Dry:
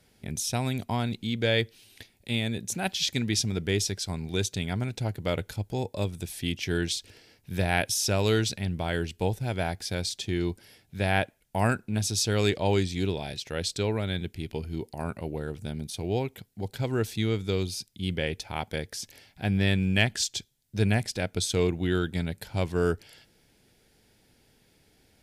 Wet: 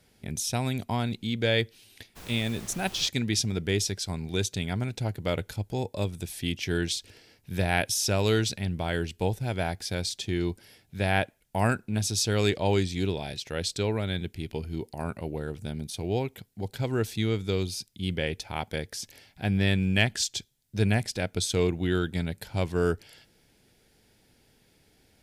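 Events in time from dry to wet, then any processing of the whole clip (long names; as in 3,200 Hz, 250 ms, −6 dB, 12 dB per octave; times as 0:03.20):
0:02.15–0:03.07: background noise pink −45 dBFS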